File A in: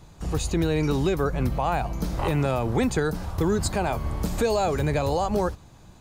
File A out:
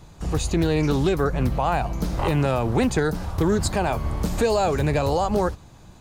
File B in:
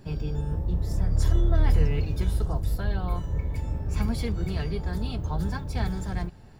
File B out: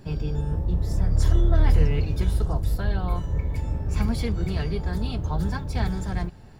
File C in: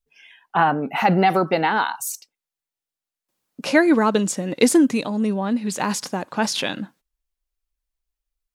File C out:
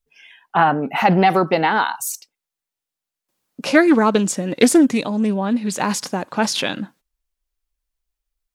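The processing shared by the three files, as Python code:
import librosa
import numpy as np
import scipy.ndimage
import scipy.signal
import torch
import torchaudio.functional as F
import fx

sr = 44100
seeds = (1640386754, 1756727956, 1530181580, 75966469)

y = fx.doppler_dist(x, sr, depth_ms=0.14)
y = y * librosa.db_to_amplitude(2.5)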